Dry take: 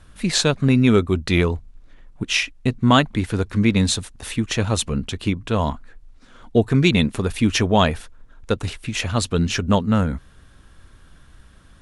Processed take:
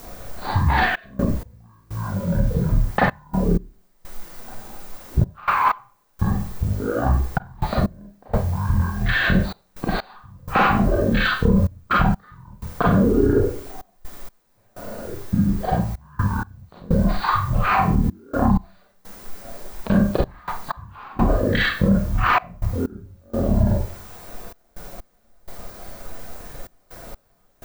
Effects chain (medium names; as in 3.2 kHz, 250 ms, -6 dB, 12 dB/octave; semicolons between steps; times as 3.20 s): compressor with a negative ratio -24 dBFS, ratio -1; reverb removal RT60 0.56 s; speed mistake 78 rpm record played at 33 rpm; transient shaper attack +7 dB, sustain 0 dB; bass shelf 80 Hz -10 dB; added noise white -45 dBFS; peaking EQ 2.9 kHz -6 dB 0.91 oct; filtered feedback delay 94 ms, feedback 59%, level -22 dB; Schroeder reverb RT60 0.37 s, combs from 31 ms, DRR -4 dB; de-esser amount 90%; trance gate "xxxx.x..x" 63 bpm -24 dB; loudness maximiser +12 dB; trim -6.5 dB